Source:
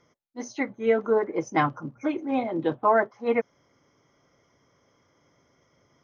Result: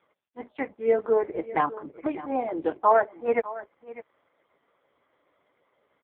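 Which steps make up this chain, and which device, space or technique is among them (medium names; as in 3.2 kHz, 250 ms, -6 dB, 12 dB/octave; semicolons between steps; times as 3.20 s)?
0.70–2.37 s: dynamic bell 1.5 kHz, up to -4 dB, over -36 dBFS, Q 1.5; satellite phone (band-pass 390–3100 Hz; delay 602 ms -16.5 dB; trim +2.5 dB; AMR-NB 4.75 kbps 8 kHz)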